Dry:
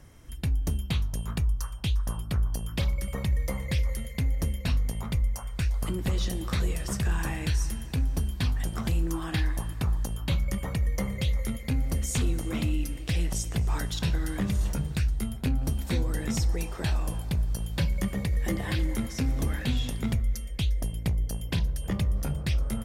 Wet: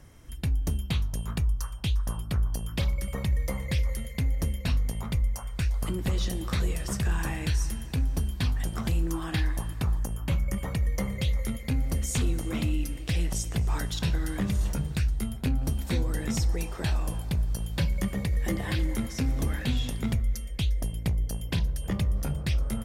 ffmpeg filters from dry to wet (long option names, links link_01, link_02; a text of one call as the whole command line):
ffmpeg -i in.wav -filter_complex "[0:a]asettb=1/sr,asplit=3[link_01][link_02][link_03];[link_01]atrim=end=9.994[link_04];[link_02]atrim=start=9.99:end=10.57,asetpts=PTS-STARTPTS,afade=type=in:duration=0.004:curve=qsin,afade=type=out:start_time=0.576:duration=0.004:curve=qsin,equalizer=frequency=3900:width=2.3:gain=-11[link_05];[link_03]atrim=start=10.566[link_06];[link_04][link_05]acrossfade=duration=0.004:curve1=hsin:curve2=qsin[link_07];[link_07][link_06]acrossfade=duration=0.004:curve1=qsin:curve2=hsin" out.wav